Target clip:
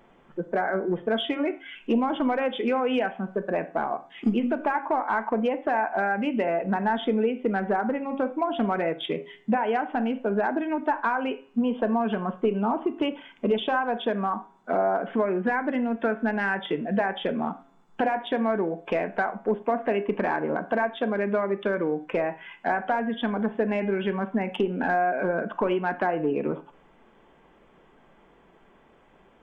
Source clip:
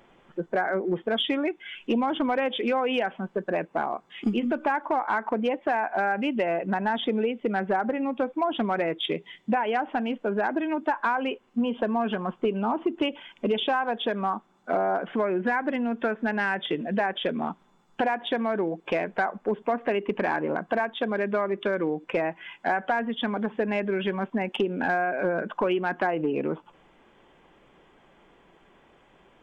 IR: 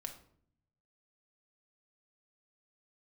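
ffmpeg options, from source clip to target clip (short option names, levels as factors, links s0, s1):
-filter_complex "[0:a]bandreject=f=136.6:t=h:w=4,bandreject=f=273.2:t=h:w=4,bandreject=f=409.8:t=h:w=4,bandreject=f=546.4:t=h:w=4,bandreject=f=683:t=h:w=4,bandreject=f=819.6:t=h:w=4,bandreject=f=956.2:t=h:w=4,bandreject=f=1092.8:t=h:w=4,bandreject=f=1229.4:t=h:w=4,bandreject=f=1366:t=h:w=4,bandreject=f=1502.6:t=h:w=4,bandreject=f=1639.2:t=h:w=4,bandreject=f=1775.8:t=h:w=4,bandreject=f=1912.4:t=h:w=4,bandreject=f=2049:t=h:w=4,bandreject=f=2185.6:t=h:w=4,bandreject=f=2322.2:t=h:w=4,bandreject=f=2458.8:t=h:w=4,bandreject=f=2595.4:t=h:w=4,bandreject=f=2732:t=h:w=4,bandreject=f=2868.6:t=h:w=4,bandreject=f=3005.2:t=h:w=4,asplit=2[s0][s1];[1:a]atrim=start_sample=2205,afade=t=out:st=0.16:d=0.01,atrim=end_sample=7497,lowpass=2400[s2];[s1][s2]afir=irnorm=-1:irlink=0,volume=1.06[s3];[s0][s3]amix=inputs=2:normalize=0,volume=0.668"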